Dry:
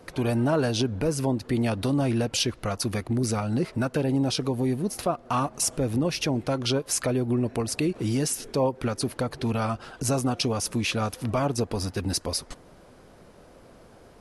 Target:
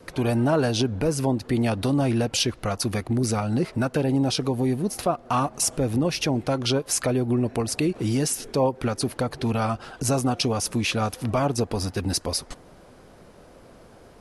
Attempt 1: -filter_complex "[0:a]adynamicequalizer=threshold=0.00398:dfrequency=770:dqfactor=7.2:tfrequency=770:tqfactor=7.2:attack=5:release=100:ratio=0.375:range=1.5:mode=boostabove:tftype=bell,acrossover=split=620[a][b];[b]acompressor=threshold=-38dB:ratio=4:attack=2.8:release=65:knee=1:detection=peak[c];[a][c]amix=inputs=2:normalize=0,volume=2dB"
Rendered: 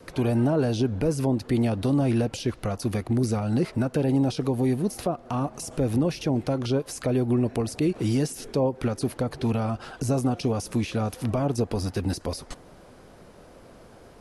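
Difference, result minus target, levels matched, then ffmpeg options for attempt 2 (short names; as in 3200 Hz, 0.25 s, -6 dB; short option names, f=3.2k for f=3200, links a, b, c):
compressor: peak gain reduction +15 dB
-af "adynamicequalizer=threshold=0.00398:dfrequency=770:dqfactor=7.2:tfrequency=770:tqfactor=7.2:attack=5:release=100:ratio=0.375:range=1.5:mode=boostabove:tftype=bell,volume=2dB"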